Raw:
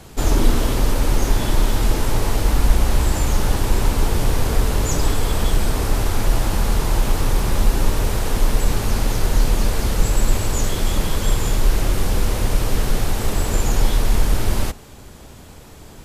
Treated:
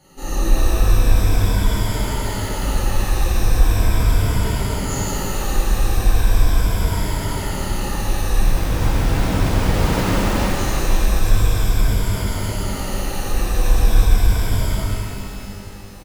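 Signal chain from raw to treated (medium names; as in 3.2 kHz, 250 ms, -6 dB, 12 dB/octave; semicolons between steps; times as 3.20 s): drifting ripple filter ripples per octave 1.7, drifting -0.39 Hz, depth 17 dB; hum notches 60/120 Hz; on a send: delay 169 ms -22.5 dB; 8.43–10.43 s: on the sum: Schmitt trigger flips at -21 dBFS; pitch-shifted reverb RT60 3.1 s, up +12 st, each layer -8 dB, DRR -11 dB; trim -16.5 dB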